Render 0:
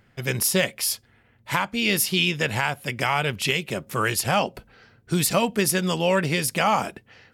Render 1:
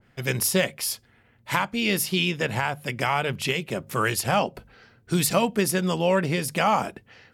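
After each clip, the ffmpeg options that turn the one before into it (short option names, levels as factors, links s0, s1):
-af "bandreject=f=50:t=h:w=6,bandreject=f=100:t=h:w=6,bandreject=f=150:t=h:w=6,adynamicequalizer=threshold=0.0178:dfrequency=1600:dqfactor=0.7:tfrequency=1600:tqfactor=0.7:attack=5:release=100:ratio=0.375:range=3:mode=cutabove:tftype=highshelf"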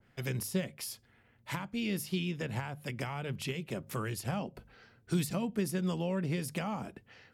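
-filter_complex "[0:a]acrossover=split=330[s0][s1];[s1]acompressor=threshold=0.0251:ratio=6[s2];[s0][s2]amix=inputs=2:normalize=0,volume=0.501"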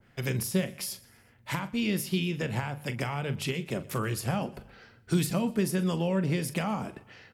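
-filter_complex "[0:a]asplit=2[s0][s1];[s1]adelay=42,volume=0.224[s2];[s0][s2]amix=inputs=2:normalize=0,aecho=1:1:123|246|369:0.0841|0.0404|0.0194,volume=1.78"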